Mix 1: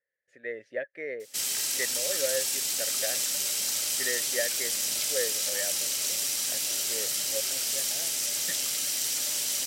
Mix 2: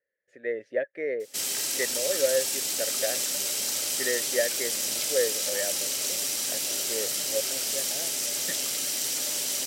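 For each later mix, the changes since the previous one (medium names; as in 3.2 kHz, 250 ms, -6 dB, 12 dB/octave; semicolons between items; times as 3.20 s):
master: add peaking EQ 390 Hz +7 dB 2.3 oct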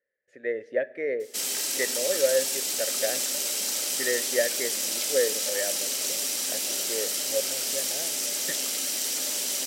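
background: add elliptic high-pass 180 Hz; reverb: on, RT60 0.95 s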